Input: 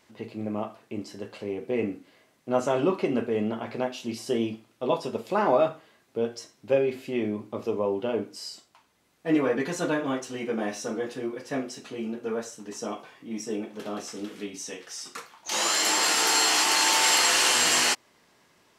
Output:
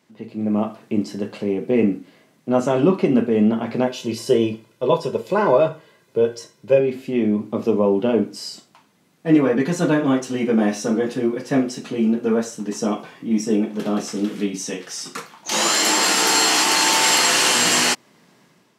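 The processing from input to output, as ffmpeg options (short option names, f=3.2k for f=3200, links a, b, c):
-filter_complex "[0:a]asettb=1/sr,asplit=3[a][b][c];[a]atrim=end=3.874[d];[b]atrim=start=3.87:end=6.8,asetpts=PTS-STARTPTS,afade=t=in:d=0.004:c=qsin,afade=t=out:st=2.926:d=0.004:c=qsin,aecho=1:1:2:0.65,atrim=end_sample=129213[e];[c]atrim=start=6.796[f];[d][e]acrossfade=d=0.004:c1=hsin:c2=qsin[g];[g][f]acrossfade=d=0.004:c1=qsin:c2=hsin,highpass=130,equalizer=f=170:t=o:w=1.6:g=11,dynaudnorm=f=140:g=7:m=10.5dB,volume=-3dB"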